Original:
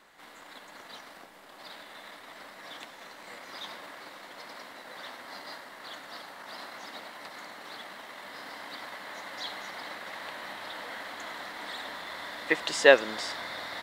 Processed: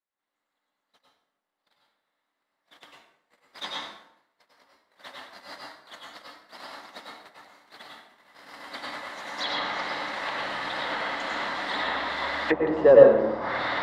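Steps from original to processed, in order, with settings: gate -40 dBFS, range -45 dB; sine folder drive 7 dB, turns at -2 dBFS; plate-style reverb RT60 0.73 s, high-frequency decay 0.75×, pre-delay 85 ms, DRR -3 dB; low-pass that closes with the level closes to 680 Hz, closed at -14 dBFS; trim -4 dB

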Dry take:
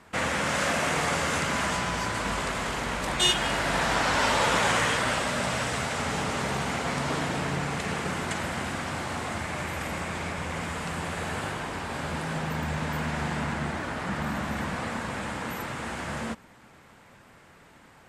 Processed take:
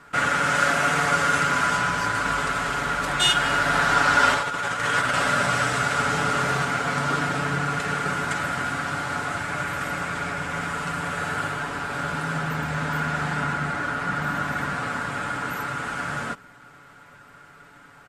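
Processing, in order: peaking EQ 1.4 kHz +13.5 dB 0.28 oct; 4.34–6.65 s: compressor with a negative ratio -23 dBFS, ratio -0.5; comb 7 ms, depth 59%

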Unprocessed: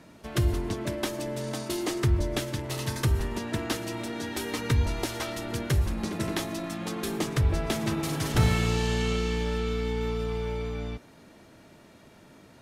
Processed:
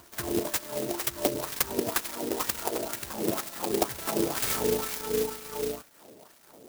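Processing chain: local Wiener filter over 9 samples; tilt shelf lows +4 dB, about 1.5 kHz; harmonic-percussive split percussive +6 dB; treble shelf 2.5 kHz +12 dB; on a send: reverse echo 407 ms -18 dB; on the sum: LFO band-pass sine 1.1 Hz 420–2800 Hz; granular stretch 0.53×, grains 70 ms; sampling jitter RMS 0.13 ms; trim +5.5 dB

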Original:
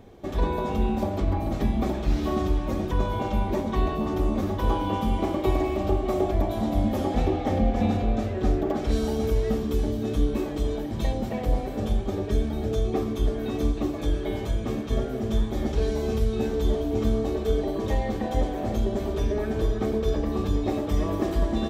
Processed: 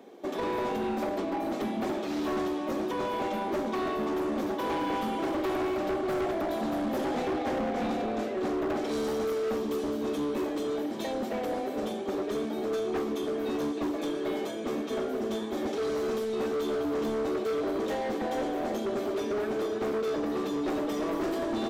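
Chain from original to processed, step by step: high-pass 260 Hz 24 dB/octave; bass shelf 480 Hz +3 dB; hard clipper -27 dBFS, distortion -9 dB

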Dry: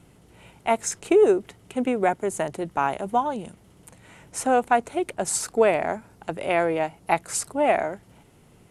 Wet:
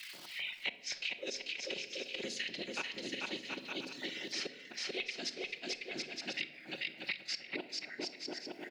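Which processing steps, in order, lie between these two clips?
spectral noise reduction 22 dB; harmonic-percussive split percussive -11 dB; FFT filter 250 Hz 0 dB, 460 Hz -27 dB, 970 Hz -29 dB, 2.4 kHz +1 dB, 3.4 kHz +5 dB, 4.9 kHz +11 dB, 8.7 kHz -29 dB; inverted gate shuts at -28 dBFS, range -32 dB; crackle 280 per s -73 dBFS; whisper effect; LFO high-pass square 3.8 Hz 600–1900 Hz; bouncing-ball echo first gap 440 ms, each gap 0.65×, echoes 5; on a send at -9 dB: reverberation RT60 0.60 s, pre-delay 5 ms; on the sum: three bands compressed up and down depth 100%; trim +6 dB

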